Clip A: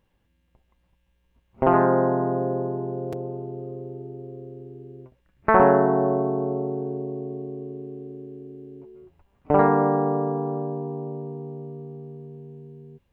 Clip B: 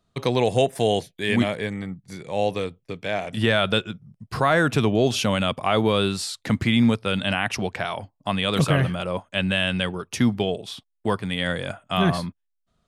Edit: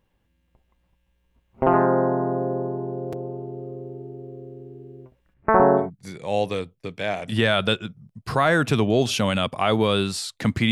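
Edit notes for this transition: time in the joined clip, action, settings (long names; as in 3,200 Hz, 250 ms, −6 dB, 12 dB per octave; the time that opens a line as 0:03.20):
clip A
0:05.33–0:05.90: low-pass filter 2,400 Hz → 1,000 Hz
0:05.83: continue with clip B from 0:01.88, crossfade 0.14 s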